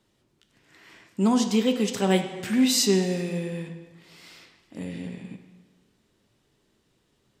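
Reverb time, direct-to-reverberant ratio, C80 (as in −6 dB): 1.3 s, 5.5 dB, 10.0 dB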